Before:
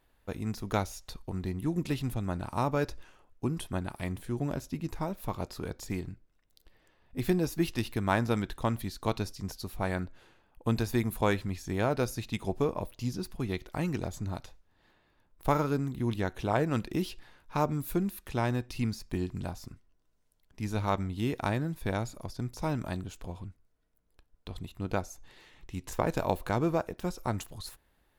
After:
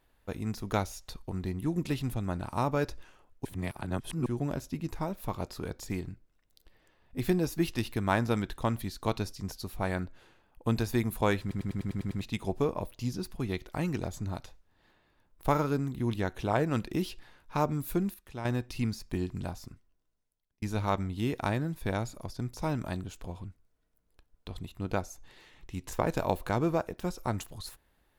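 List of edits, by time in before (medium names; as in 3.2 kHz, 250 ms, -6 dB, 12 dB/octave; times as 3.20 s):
3.45–4.26 s: reverse
11.41 s: stutter in place 0.10 s, 8 plays
18.14–18.45 s: gain -9 dB
19.54–20.62 s: fade out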